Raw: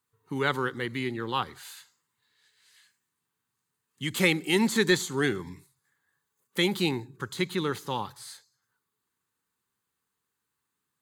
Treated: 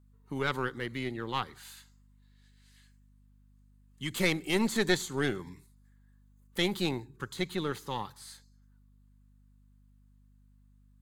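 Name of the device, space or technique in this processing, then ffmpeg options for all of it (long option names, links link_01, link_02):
valve amplifier with mains hum: -af "aeval=exprs='(tanh(5.01*val(0)+0.75)-tanh(0.75))/5.01':channel_layout=same,aeval=exprs='val(0)+0.001*(sin(2*PI*50*n/s)+sin(2*PI*2*50*n/s)/2+sin(2*PI*3*50*n/s)/3+sin(2*PI*4*50*n/s)/4+sin(2*PI*5*50*n/s)/5)':channel_layout=same"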